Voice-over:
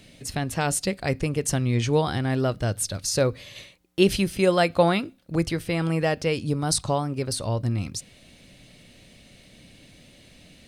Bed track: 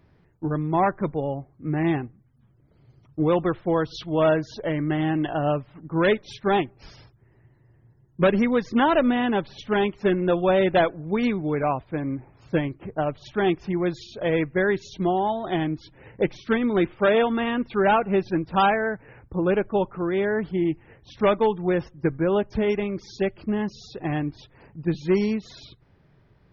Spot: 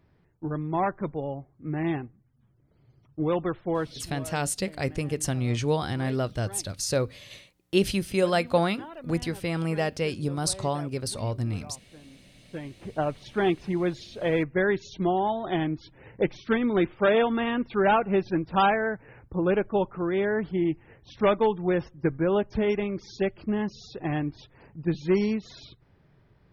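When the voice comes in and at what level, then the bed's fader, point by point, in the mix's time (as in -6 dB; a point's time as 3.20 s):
3.75 s, -3.5 dB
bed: 3.97 s -5 dB
4.24 s -23 dB
12.34 s -23 dB
12.90 s -2 dB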